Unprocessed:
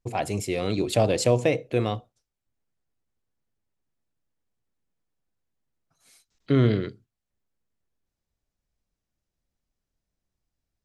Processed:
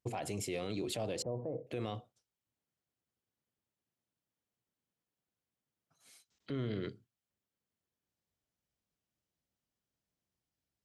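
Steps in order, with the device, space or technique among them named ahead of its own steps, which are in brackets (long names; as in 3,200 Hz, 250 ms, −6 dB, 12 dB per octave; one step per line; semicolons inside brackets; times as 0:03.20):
broadcast voice chain (high-pass filter 97 Hz 12 dB per octave; de-essing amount 50%; downward compressor 3 to 1, threshold −27 dBFS, peak gain reduction 9.5 dB; parametric band 3,100 Hz +4 dB 0.21 octaves; brickwall limiter −24.5 dBFS, peak gain reduction 10 dB)
0:01.22–0:01.67: inverse Chebyshev low-pass filter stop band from 3,300 Hz, stop band 60 dB
level −4 dB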